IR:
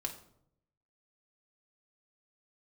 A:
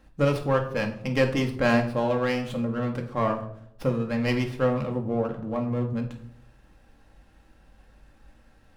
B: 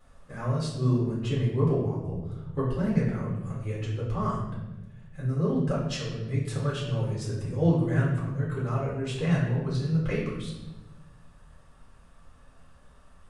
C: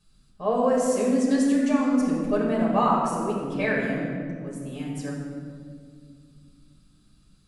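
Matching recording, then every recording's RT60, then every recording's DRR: A; 0.70, 1.1, 2.1 seconds; 2.5, −7.5, −5.0 decibels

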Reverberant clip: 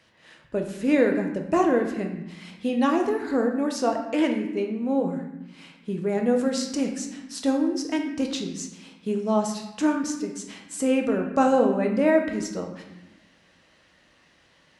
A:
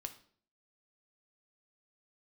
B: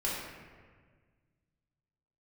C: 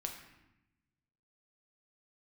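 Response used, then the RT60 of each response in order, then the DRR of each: C; 0.55, 1.6, 0.90 seconds; 6.5, −7.0, 2.5 decibels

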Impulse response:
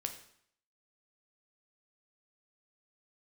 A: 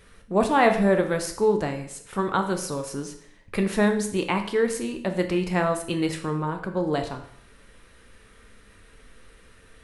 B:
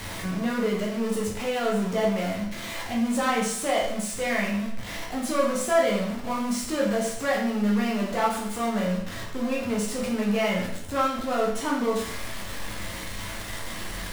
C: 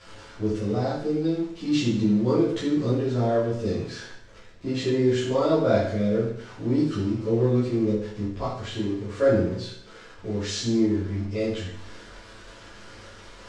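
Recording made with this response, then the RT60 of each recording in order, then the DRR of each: A; 0.65, 0.65, 0.65 seconds; 5.0, −4.0, −12.0 decibels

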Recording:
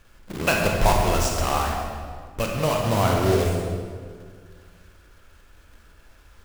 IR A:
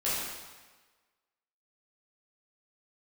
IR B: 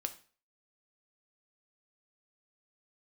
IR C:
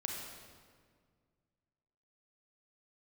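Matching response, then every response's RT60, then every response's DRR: C; 1.3, 0.40, 1.9 seconds; −10.5, 6.5, −0.5 decibels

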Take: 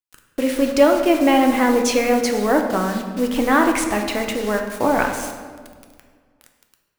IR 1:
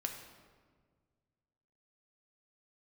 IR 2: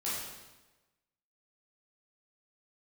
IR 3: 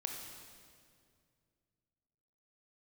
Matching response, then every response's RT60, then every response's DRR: 1; 1.7, 1.1, 2.2 seconds; 3.0, −9.5, 1.5 decibels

